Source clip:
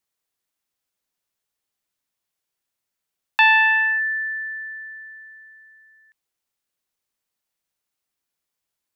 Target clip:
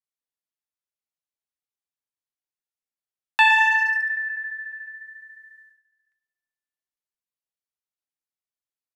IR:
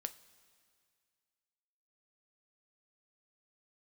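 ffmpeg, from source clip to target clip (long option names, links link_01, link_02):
-filter_complex "[0:a]agate=range=-15dB:threshold=-50dB:ratio=16:detection=peak,acontrast=22,flanger=delay=4.3:depth=5.6:regen=-58:speed=0.71:shape=triangular,asplit=2[link_01][link_02];[link_02]adelay=110,highpass=300,lowpass=3400,asoftclip=type=hard:threshold=-16.5dB,volume=-15dB[link_03];[link_01][link_03]amix=inputs=2:normalize=0,asplit=2[link_04][link_05];[1:a]atrim=start_sample=2205[link_06];[link_05][link_06]afir=irnorm=-1:irlink=0,volume=-3.5dB[link_07];[link_04][link_07]amix=inputs=2:normalize=0,aresample=32000,aresample=44100,volume=-4.5dB"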